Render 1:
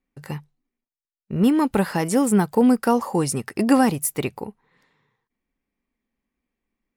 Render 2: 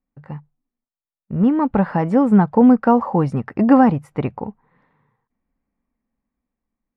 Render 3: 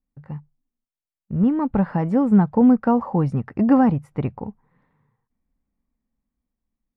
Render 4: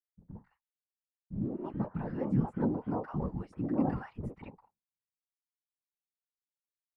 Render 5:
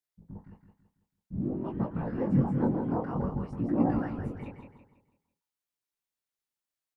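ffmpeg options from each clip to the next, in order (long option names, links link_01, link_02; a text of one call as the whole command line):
ffmpeg -i in.wav -af "lowpass=1200,equalizer=frequency=380:width=2.4:gain=-8,dynaudnorm=framelen=290:gausssize=11:maxgain=11.5dB" out.wav
ffmpeg -i in.wav -af "lowshelf=frequency=200:gain=9.5,volume=-6.5dB" out.wav
ffmpeg -i in.wav -filter_complex "[0:a]acrossover=split=310|1100[link_01][link_02][link_03];[link_02]adelay=50[link_04];[link_03]adelay=210[link_05];[link_01][link_04][link_05]amix=inputs=3:normalize=0,afftfilt=real='hypot(re,im)*cos(2*PI*random(0))':imag='hypot(re,im)*sin(2*PI*random(1))':win_size=512:overlap=0.75,agate=range=-33dB:threshold=-50dB:ratio=3:detection=peak,volume=-7.5dB" out.wav
ffmpeg -i in.wav -af "flanger=delay=17:depth=7.9:speed=0.53,aecho=1:1:165|330|495|660|825:0.447|0.174|0.0679|0.0265|0.0103,volume=6dB" out.wav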